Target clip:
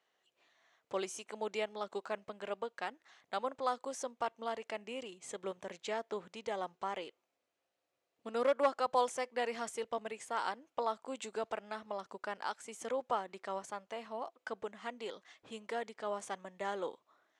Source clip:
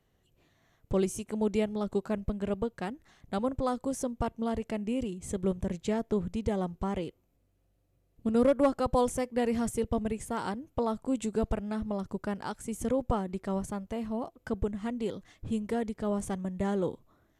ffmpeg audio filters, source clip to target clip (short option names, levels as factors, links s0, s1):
-af "highpass=730,lowpass=6000,volume=1.12"